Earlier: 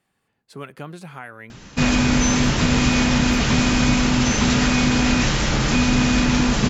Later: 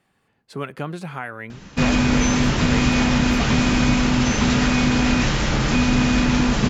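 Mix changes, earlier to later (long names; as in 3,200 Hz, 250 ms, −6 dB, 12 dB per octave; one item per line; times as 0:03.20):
speech +6.0 dB
master: add high-shelf EQ 5,300 Hz −6.5 dB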